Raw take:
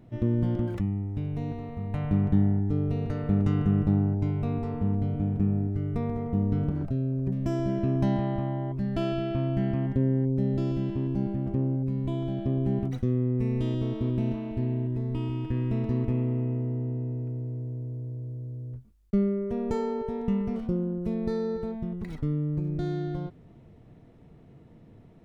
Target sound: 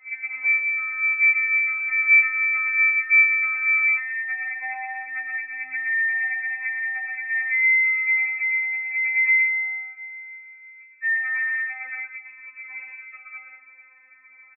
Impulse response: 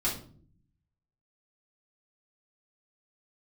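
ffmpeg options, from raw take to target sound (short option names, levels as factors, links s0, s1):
-filter_complex "[0:a]asplit=2[s0][s1];[s1]alimiter=limit=0.0944:level=0:latency=1:release=16,volume=1.26[s2];[s0][s2]amix=inputs=2:normalize=0,asetrate=76440,aresample=44100,aecho=1:1:119.5|172:0.631|0.398,lowpass=f=2100:t=q:w=0.5098,lowpass=f=2100:t=q:w=0.6013,lowpass=f=2100:t=q:w=0.9,lowpass=f=2100:t=q:w=2.563,afreqshift=-2500,tremolo=f=120:d=0.519,afftfilt=real='re*3.46*eq(mod(b,12),0)':imag='im*3.46*eq(mod(b,12),0)':win_size=2048:overlap=0.75,volume=0.794"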